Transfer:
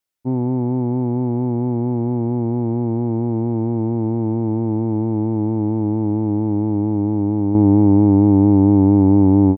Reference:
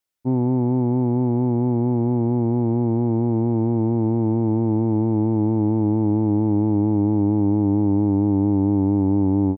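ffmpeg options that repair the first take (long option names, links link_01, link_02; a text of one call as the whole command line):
ffmpeg -i in.wav -af "asetnsamples=nb_out_samples=441:pad=0,asendcmd='7.55 volume volume -6.5dB',volume=0dB" out.wav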